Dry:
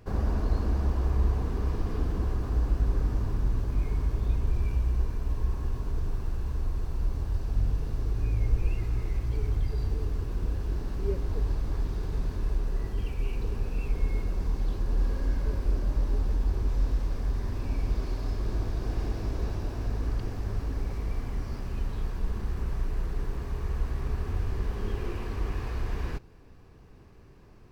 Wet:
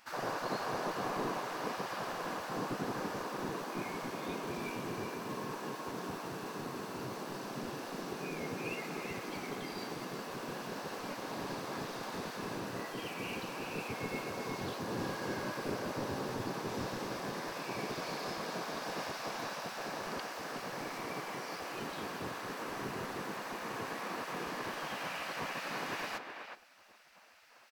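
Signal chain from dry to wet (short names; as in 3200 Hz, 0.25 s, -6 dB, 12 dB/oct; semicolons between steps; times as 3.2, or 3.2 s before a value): low shelf 360 Hz -5.5 dB; spectral gate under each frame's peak -20 dB weak; speakerphone echo 0.37 s, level -6 dB; gain +7 dB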